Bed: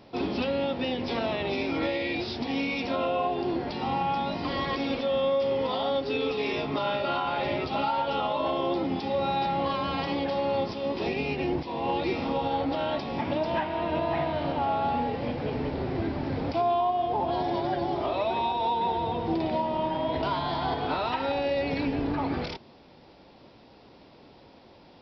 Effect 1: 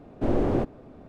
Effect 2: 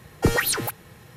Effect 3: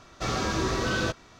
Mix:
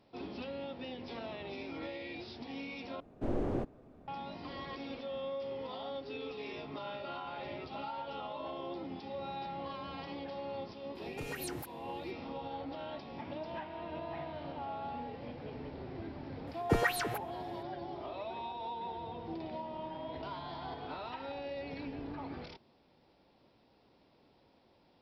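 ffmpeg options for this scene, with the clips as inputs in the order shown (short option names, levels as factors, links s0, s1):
-filter_complex "[2:a]asplit=2[s0][s1];[0:a]volume=0.2[s2];[s0]alimiter=limit=0.178:level=0:latency=1:release=183[s3];[s1]bass=f=250:g=-3,treble=f=4000:g=-11[s4];[s2]asplit=2[s5][s6];[s5]atrim=end=3.004[s7];[1:a]atrim=end=1.08,asetpts=PTS-STARTPTS,volume=0.316[s8];[s6]atrim=start=4.076[s9];[s3]atrim=end=1.16,asetpts=PTS-STARTPTS,volume=0.133,afade=t=in:d=0.004:c=hsin,afade=t=out:st=1.156:d=0.004:c=hsin,adelay=10950[s10];[s4]atrim=end=1.16,asetpts=PTS-STARTPTS,volume=0.447,afade=t=in:d=0.004:c=hsin,afade=t=out:st=1.156:d=0.004:c=hsin,adelay=16470[s11];[s7][s8]acrossfade=d=0.004:c1=hsin:c2=hsin[s12];[s12][s9]acrossfade=d=0.004:c1=hsin:c2=hsin[s13];[s13][s10][s11]amix=inputs=3:normalize=0"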